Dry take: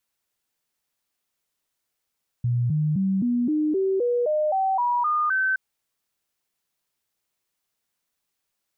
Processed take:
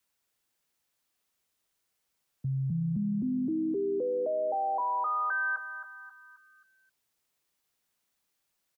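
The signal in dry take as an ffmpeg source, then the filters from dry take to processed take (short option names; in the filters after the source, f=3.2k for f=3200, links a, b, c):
-f lavfi -i "aevalsrc='0.106*clip(min(mod(t,0.26),0.26-mod(t,0.26))/0.005,0,1)*sin(2*PI*121*pow(2,floor(t/0.26)/3)*mod(t,0.26))':d=3.12:s=44100"
-af "alimiter=level_in=3dB:limit=-24dB:level=0:latency=1:release=10,volume=-3dB,afreqshift=13,aecho=1:1:267|534|801|1068|1335:0.282|0.13|0.0596|0.0274|0.0126"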